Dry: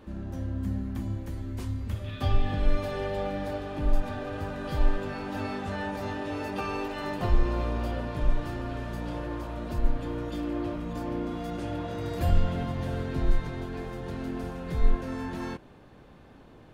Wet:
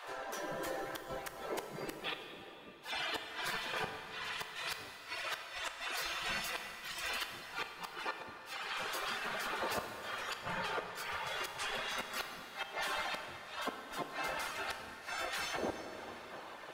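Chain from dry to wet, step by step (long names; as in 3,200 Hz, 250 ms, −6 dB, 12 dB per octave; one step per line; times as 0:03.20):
wind on the microphone 130 Hz −33 dBFS
gate on every frequency bin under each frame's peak −20 dB weak
reverb reduction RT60 0.79 s
in parallel at +1 dB: downward compressor 12 to 1, threshold −49 dBFS, peak gain reduction 19 dB
on the sum: gate with flip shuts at −32 dBFS, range −28 dB
dense smooth reverb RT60 3.5 s, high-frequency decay 0.75×, DRR 5 dB
level +6 dB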